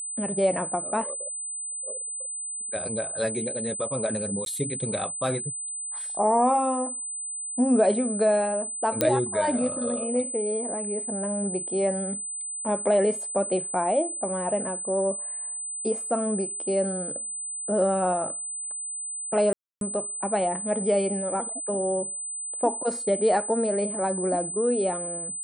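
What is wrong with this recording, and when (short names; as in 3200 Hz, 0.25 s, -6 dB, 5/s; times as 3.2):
tone 8100 Hz -31 dBFS
4.45–4.46 gap
9.01 pop -6 dBFS
19.53–19.81 gap 0.282 s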